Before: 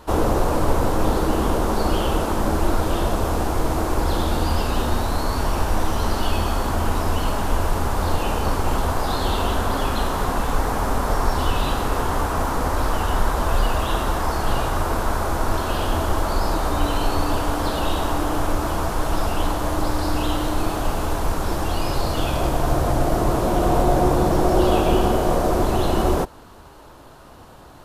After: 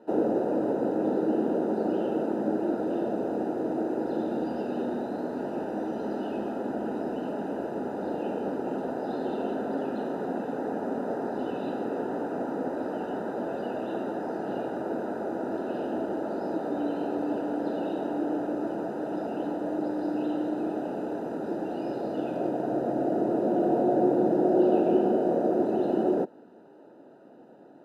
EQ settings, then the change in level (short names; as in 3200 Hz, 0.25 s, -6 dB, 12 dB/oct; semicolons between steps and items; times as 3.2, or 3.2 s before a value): running mean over 40 samples; HPF 220 Hz 24 dB/oct; 0.0 dB